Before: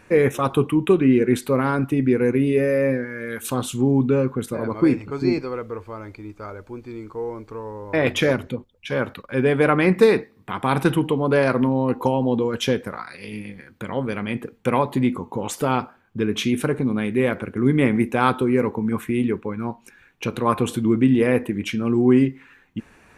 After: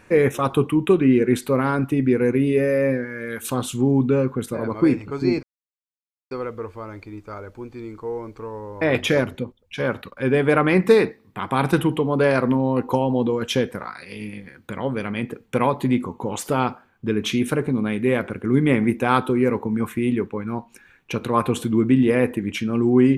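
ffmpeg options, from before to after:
-filter_complex "[0:a]asplit=2[a][b];[a]atrim=end=5.43,asetpts=PTS-STARTPTS,afade=t=out:st=5.426:d=0.004:c=hsin,apad=pad_dur=0.88[c];[b]atrim=start=5.43,asetpts=PTS-STARTPTS,afade=t=in:d=0.004:c=hsin[d];[c][d]concat=n=2:v=0:a=1"

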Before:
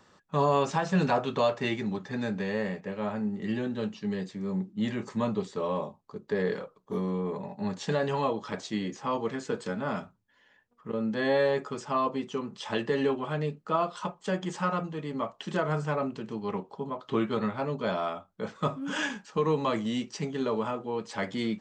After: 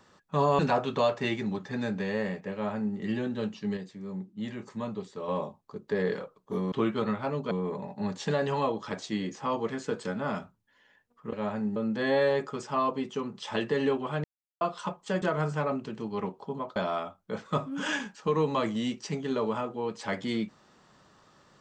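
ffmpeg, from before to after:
-filter_complex "[0:a]asplit=12[a][b][c][d][e][f][g][h][i][j][k][l];[a]atrim=end=0.592[m];[b]atrim=start=0.988:end=4.172[n];[c]atrim=start=4.168:end=5.682,asetpts=PTS-STARTPTS,volume=-6dB[o];[d]atrim=start=5.678:end=7.122[p];[e]atrim=start=17.068:end=17.862[q];[f]atrim=start=7.118:end=10.942[r];[g]atrim=start=2.928:end=3.362[s];[h]atrim=start=10.938:end=13.42,asetpts=PTS-STARTPTS,afade=t=out:st=2.478:d=0.004:c=hsin[t];[i]atrim=start=13.42:end=13.79,asetpts=PTS-STARTPTS,volume=0[u];[j]atrim=start=13.79:end=14.402,asetpts=PTS-STARTPTS,afade=t=in:d=0.004:c=hsin[v];[k]atrim=start=15.528:end=17.072[w];[l]atrim=start=17.858[x];[m][n]acrossfade=d=0.004:c1=hsin:c2=hsin[y];[y][o]acrossfade=d=0.004:c1=hsin:c2=hsin[z];[z][p]acrossfade=d=0.004:c1=hsin:c2=hsin[aa];[aa][q]acrossfade=d=0.004:c1=hsin:c2=hsin[ab];[ab][r]acrossfade=d=0.004:c1=hsin:c2=hsin[ac];[ac][s]acrossfade=d=0.004:c1=hsin:c2=hsin[ad];[t][u][v]concat=n=3:v=0:a=1[ae];[ad][ae]acrossfade=d=0.004:c1=hsin:c2=hsin[af];[af][w]acrossfade=d=0.004:c1=hsin:c2=hsin[ag];[ag][x]acrossfade=d=0.004:c1=hsin:c2=hsin"

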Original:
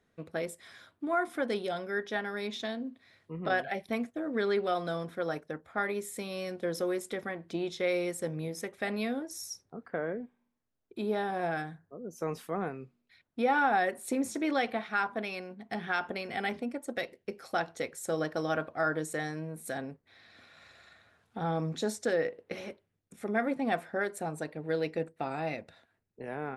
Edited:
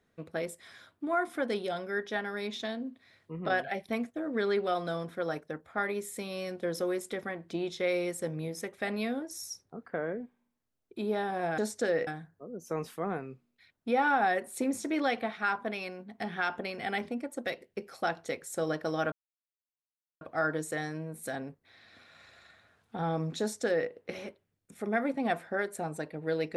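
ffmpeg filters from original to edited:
-filter_complex "[0:a]asplit=4[a][b][c][d];[a]atrim=end=11.582[e];[b]atrim=start=21.818:end=22.312[f];[c]atrim=start=11.578:end=18.63,asetpts=PTS-STARTPTS,afade=t=out:st=7.048:d=0.004:c=hsin,apad=pad_dur=1.09[g];[d]atrim=start=18.63,asetpts=PTS-STARTPTS,afade=t=in:d=0.004:c=hsin[h];[e][f]acrossfade=d=0.004:c1=hsin:c2=hsin[i];[g][h]concat=n=2:v=0:a=1[j];[i][j]acrossfade=d=0.004:c1=hsin:c2=hsin"

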